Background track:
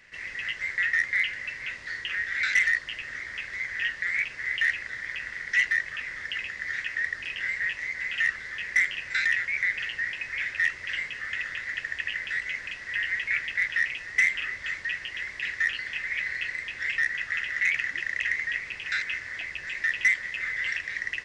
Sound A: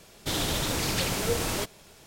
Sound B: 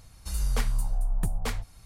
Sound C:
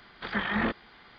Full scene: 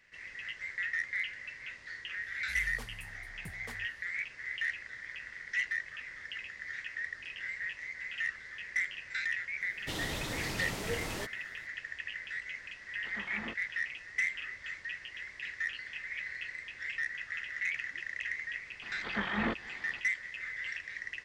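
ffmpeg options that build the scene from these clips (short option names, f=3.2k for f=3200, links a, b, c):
-filter_complex "[3:a]asplit=2[a][b];[0:a]volume=-9.5dB[c];[2:a]highpass=f=49:w=0.5412,highpass=f=49:w=1.3066[d];[1:a]highshelf=f=6.9k:g=-6.5[e];[b]acompressor=mode=upward:threshold=-38dB:ratio=2.5:attack=3.2:release=140:knee=2.83:detection=peak[f];[d]atrim=end=1.85,asetpts=PTS-STARTPTS,volume=-14dB,afade=t=in:d=0.004:c=hsin,afade=t=out:st=1.846:d=0.004:c=hsin,adelay=2220[g];[e]atrim=end=2.06,asetpts=PTS-STARTPTS,volume=-8.5dB,afade=t=in:d=0.004:c=hsin,afade=t=out:st=2.056:d=0.004:c=hsin,adelay=9610[h];[a]atrim=end=1.18,asetpts=PTS-STARTPTS,volume=-15dB,afade=t=in:d=0.004:c=hsin,afade=t=out:st=1.176:d=0.004:c=hsin,adelay=12820[i];[f]atrim=end=1.18,asetpts=PTS-STARTPTS,volume=-4.5dB,afade=t=in:d=0.004:c=hsin,afade=t=out:st=1.176:d=0.004:c=hsin,adelay=18820[j];[c][g][h][i][j]amix=inputs=5:normalize=0"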